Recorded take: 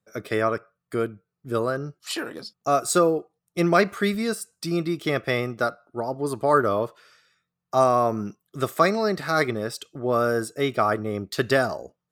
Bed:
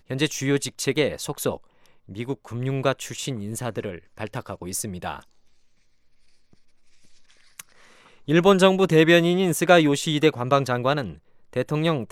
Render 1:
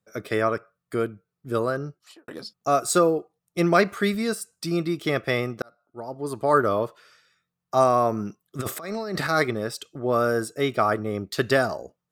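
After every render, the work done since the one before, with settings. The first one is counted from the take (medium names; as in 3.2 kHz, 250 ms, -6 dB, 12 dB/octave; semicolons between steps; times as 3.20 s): 1.81–2.28 s: studio fade out; 5.62–6.57 s: fade in; 8.59–9.27 s: compressor with a negative ratio -30 dBFS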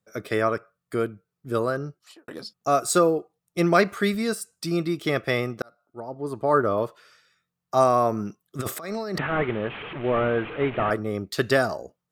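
6.00–6.78 s: treble shelf 2.5 kHz -9.5 dB; 9.18–10.91 s: one-bit delta coder 16 kbps, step -29.5 dBFS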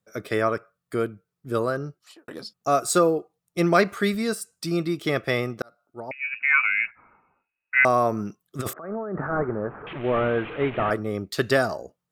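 6.11–7.85 s: frequency inversion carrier 2.7 kHz; 8.73–9.87 s: elliptic low-pass 1.5 kHz, stop band 80 dB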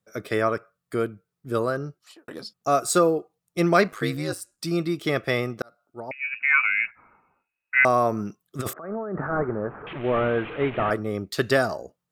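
3.87–4.57 s: ring modulator 47 Hz -> 120 Hz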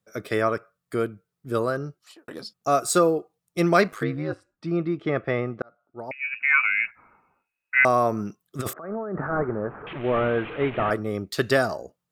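4.03–6.00 s: low-pass 1.8 kHz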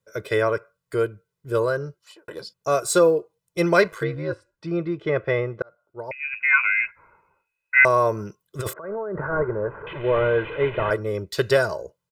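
treble shelf 9.6 kHz -3.5 dB; comb 2 ms, depth 74%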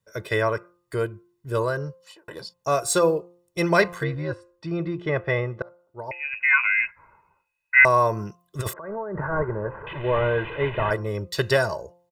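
comb 1.1 ms, depth 36%; de-hum 174.8 Hz, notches 7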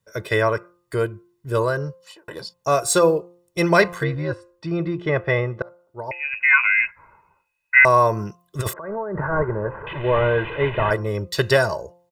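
trim +3.5 dB; peak limiter -3 dBFS, peak gain reduction 2.5 dB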